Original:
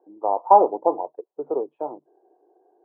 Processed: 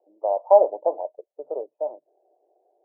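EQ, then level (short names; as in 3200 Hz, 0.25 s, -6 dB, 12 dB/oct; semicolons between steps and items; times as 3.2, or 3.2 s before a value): band-pass 600 Hz, Q 7.5; air absorption 370 m; +7.5 dB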